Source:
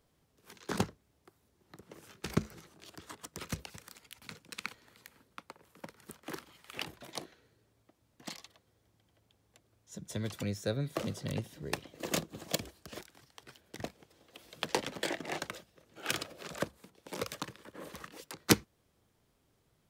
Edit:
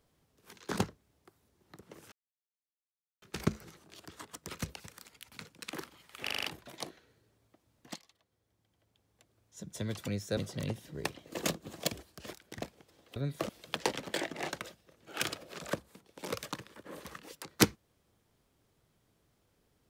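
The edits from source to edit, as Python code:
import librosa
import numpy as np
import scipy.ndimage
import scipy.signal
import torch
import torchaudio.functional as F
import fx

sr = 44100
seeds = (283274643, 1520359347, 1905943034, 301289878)

y = fx.edit(x, sr, fx.insert_silence(at_s=2.12, length_s=1.1),
    fx.cut(start_s=4.61, length_s=1.65),
    fx.stutter(start_s=6.78, slice_s=0.04, count=6),
    fx.fade_in_from(start_s=8.31, length_s=1.68, floor_db=-14.5),
    fx.move(start_s=10.72, length_s=0.33, to_s=14.38),
    fx.cut(start_s=13.11, length_s=0.54), tone=tone)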